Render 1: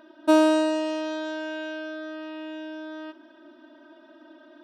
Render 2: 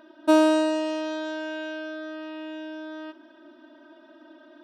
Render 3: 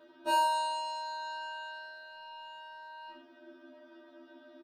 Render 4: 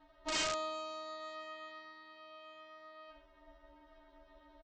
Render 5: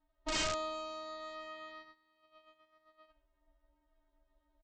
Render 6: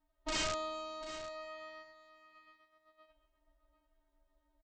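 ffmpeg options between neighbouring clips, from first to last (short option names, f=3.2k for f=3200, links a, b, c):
-af anull
-af "aecho=1:1:30|63|99.3|139.2|183.2:0.631|0.398|0.251|0.158|0.1,afftfilt=real='re*2*eq(mod(b,4),0)':imag='im*2*eq(mod(b,4),0)':win_size=2048:overlap=0.75,volume=-4dB"
-af "aresample=16000,aeval=exprs='(mod(15*val(0)+1,2)-1)/15':c=same,aresample=44100,aeval=exprs='val(0)*sin(2*PI*310*n/s)':c=same,volume=-3.5dB"
-af "agate=range=-19dB:threshold=-51dB:ratio=16:detection=peak,lowshelf=f=150:g=12"
-af "aecho=1:1:743:0.188,volume=-1dB"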